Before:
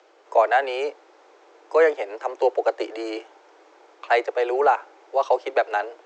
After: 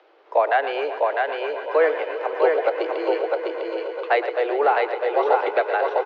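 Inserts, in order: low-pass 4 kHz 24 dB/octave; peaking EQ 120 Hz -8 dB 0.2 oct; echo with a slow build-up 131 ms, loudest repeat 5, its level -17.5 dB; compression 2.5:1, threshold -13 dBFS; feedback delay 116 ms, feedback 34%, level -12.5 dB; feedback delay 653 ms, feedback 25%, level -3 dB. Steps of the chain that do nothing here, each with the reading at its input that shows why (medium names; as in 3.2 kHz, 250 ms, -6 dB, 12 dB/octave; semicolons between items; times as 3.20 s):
peaking EQ 120 Hz: input has nothing below 290 Hz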